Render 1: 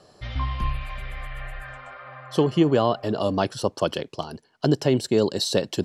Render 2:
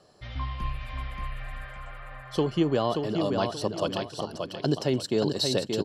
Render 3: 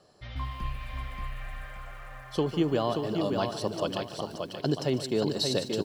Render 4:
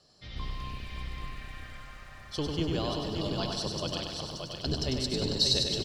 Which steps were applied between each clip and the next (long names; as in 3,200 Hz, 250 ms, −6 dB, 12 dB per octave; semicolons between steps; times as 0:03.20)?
mains-hum notches 50/100 Hz; dynamic equaliser 4,300 Hz, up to +4 dB, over −43 dBFS, Q 1.5; on a send: repeating echo 579 ms, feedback 29%, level −5 dB; on the sum: level −5.5 dB
feedback echo at a low word length 149 ms, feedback 35%, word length 8 bits, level −12.5 dB; level −2 dB
sub-octave generator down 1 octave, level +4 dB; parametric band 4,800 Hz +14 dB 1.7 octaves; on a send: repeating echo 98 ms, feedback 52%, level −4.5 dB; on the sum: level −8.5 dB